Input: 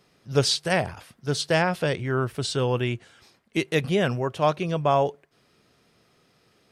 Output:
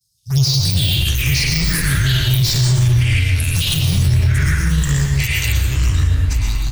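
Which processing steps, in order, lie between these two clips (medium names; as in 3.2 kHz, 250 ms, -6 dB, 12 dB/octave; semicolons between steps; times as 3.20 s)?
de-esser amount 65%; inverse Chebyshev band-stop 330–1800 Hz, stop band 60 dB; expander -60 dBFS; high-pass 100 Hz 6 dB/octave; treble shelf 10 kHz +6.5 dB; de-hum 147.8 Hz, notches 38; in parallel at -6.5 dB: Schmitt trigger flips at -41 dBFS; on the sum: touch-sensitive phaser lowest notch 300 Hz, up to 1.6 kHz, full sweep at -33 dBFS; ever faster or slower copies 160 ms, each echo -6 st, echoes 3; delay 1108 ms -15.5 dB; on a send at -1.5 dB: reverberation RT60 0.60 s, pre-delay 105 ms; on the sum: loudness maximiser +28 dB; trim -6 dB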